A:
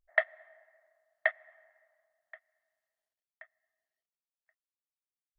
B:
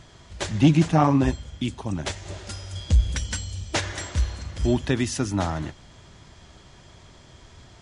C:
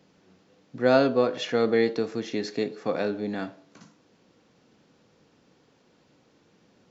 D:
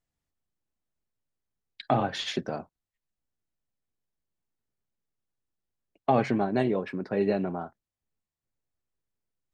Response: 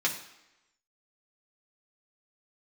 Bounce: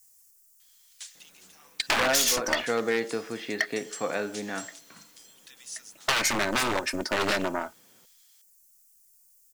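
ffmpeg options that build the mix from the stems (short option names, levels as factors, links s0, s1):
-filter_complex "[0:a]asoftclip=type=hard:threshold=0.112,adelay=2350,volume=1[s0];[1:a]acompressor=threshold=0.0501:ratio=4,highpass=700,aderivative,adelay=600,volume=0.299[s1];[2:a]lowpass=2400,adelay=1150,volume=1.06[s2];[3:a]aecho=1:1:3.3:0.77,aexciter=amount=7.8:drive=6.9:freq=5300,aeval=exprs='0.422*(cos(1*acos(clip(val(0)/0.422,-1,1)))-cos(1*PI/2))+0.075*(cos(4*acos(clip(val(0)/0.422,-1,1)))-cos(4*PI/2))+0.0266*(cos(5*acos(clip(val(0)/0.422,-1,1)))-cos(5*PI/2))+0.0596*(cos(8*acos(clip(val(0)/0.422,-1,1)))-cos(8*PI/2))':c=same,volume=1.26[s3];[s0][s1][s2][s3]amix=inputs=4:normalize=0,aeval=exprs='0.237*(abs(mod(val(0)/0.237+3,4)-2)-1)':c=same,tiltshelf=f=930:g=-7.5,acompressor=threshold=0.1:ratio=6"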